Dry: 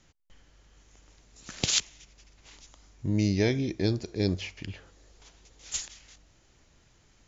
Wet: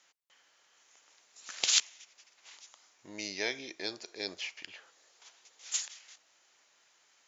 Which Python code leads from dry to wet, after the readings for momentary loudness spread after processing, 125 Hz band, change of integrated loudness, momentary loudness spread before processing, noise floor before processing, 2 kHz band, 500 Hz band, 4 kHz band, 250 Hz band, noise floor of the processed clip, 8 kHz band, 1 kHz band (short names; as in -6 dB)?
25 LU, -32.0 dB, -4.0 dB, 17 LU, -63 dBFS, 0.0 dB, -11.0 dB, 0.0 dB, -19.0 dB, -69 dBFS, n/a, -2.5 dB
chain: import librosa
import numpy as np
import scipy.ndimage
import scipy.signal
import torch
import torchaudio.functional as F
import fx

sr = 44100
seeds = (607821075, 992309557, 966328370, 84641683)

y = scipy.signal.sosfilt(scipy.signal.butter(2, 810.0, 'highpass', fs=sr, output='sos'), x)